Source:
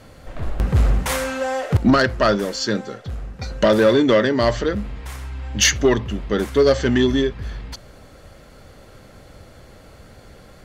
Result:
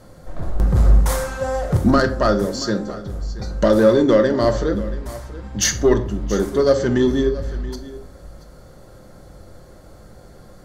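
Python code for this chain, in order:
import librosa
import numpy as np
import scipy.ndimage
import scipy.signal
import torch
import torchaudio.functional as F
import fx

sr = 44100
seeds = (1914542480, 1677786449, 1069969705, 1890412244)

y = fx.peak_eq(x, sr, hz=2600.0, db=-12.0, octaves=1.0)
y = y + 10.0 ** (-17.0 / 20.0) * np.pad(y, (int(679 * sr / 1000.0), 0))[:len(y)]
y = fx.room_shoebox(y, sr, seeds[0], volume_m3=550.0, walls='furnished', distance_m=0.9)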